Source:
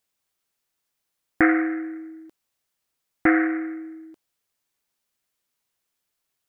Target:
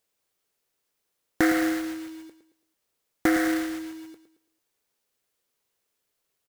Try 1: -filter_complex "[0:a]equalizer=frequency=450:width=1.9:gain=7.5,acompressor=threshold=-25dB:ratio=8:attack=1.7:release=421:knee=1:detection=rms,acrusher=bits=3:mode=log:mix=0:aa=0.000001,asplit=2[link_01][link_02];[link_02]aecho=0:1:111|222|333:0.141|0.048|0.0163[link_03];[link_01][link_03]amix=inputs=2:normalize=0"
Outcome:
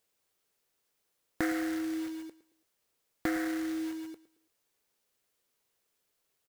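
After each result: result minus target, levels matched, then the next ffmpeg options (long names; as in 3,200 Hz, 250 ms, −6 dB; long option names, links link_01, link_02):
downward compressor: peak gain reduction +9.5 dB; echo-to-direct −6 dB
-filter_complex "[0:a]equalizer=frequency=450:width=1.9:gain=7.5,acompressor=threshold=-14dB:ratio=8:attack=1.7:release=421:knee=1:detection=rms,acrusher=bits=3:mode=log:mix=0:aa=0.000001,asplit=2[link_01][link_02];[link_02]aecho=0:1:111|222|333:0.141|0.048|0.0163[link_03];[link_01][link_03]amix=inputs=2:normalize=0"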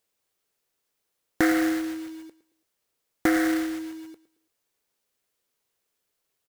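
echo-to-direct −6 dB
-filter_complex "[0:a]equalizer=frequency=450:width=1.9:gain=7.5,acompressor=threshold=-14dB:ratio=8:attack=1.7:release=421:knee=1:detection=rms,acrusher=bits=3:mode=log:mix=0:aa=0.000001,asplit=2[link_01][link_02];[link_02]aecho=0:1:111|222|333|444:0.282|0.0958|0.0326|0.0111[link_03];[link_01][link_03]amix=inputs=2:normalize=0"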